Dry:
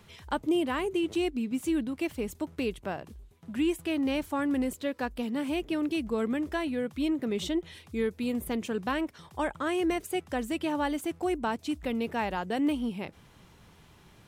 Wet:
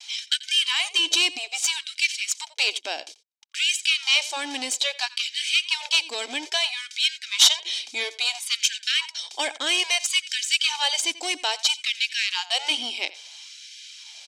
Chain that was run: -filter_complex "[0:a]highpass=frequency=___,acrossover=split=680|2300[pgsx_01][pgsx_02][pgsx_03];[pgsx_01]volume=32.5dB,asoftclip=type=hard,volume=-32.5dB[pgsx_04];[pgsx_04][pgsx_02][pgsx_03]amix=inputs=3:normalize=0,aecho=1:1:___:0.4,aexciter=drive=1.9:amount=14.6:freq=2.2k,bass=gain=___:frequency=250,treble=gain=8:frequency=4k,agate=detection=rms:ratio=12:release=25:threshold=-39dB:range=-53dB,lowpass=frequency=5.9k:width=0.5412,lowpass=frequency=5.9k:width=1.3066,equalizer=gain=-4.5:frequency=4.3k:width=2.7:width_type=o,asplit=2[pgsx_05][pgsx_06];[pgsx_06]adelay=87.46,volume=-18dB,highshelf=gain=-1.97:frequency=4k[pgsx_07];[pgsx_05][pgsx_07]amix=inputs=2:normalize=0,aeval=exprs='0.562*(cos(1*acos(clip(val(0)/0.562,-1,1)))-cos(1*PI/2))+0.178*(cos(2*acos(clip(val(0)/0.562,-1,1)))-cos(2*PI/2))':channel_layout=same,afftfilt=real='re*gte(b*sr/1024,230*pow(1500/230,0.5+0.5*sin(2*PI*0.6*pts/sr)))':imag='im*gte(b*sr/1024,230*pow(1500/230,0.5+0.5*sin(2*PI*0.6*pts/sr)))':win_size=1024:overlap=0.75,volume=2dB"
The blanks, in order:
110, 1.3, -9